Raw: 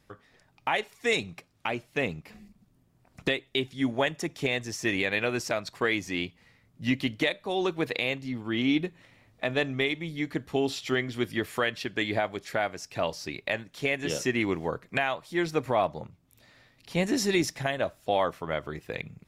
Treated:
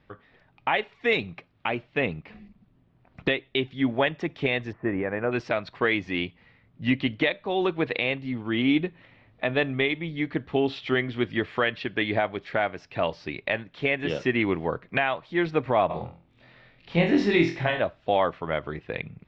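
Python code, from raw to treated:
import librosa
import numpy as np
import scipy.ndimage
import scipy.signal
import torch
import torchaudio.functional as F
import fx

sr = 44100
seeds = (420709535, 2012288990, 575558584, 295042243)

y = fx.lowpass(x, sr, hz=1500.0, slope=24, at=(4.71, 5.31), fade=0.02)
y = fx.room_flutter(y, sr, wall_m=4.1, rt60_s=0.36, at=(15.89, 17.79), fade=0.02)
y = scipy.signal.sosfilt(scipy.signal.butter(4, 3500.0, 'lowpass', fs=sr, output='sos'), y)
y = y * librosa.db_to_amplitude(3.0)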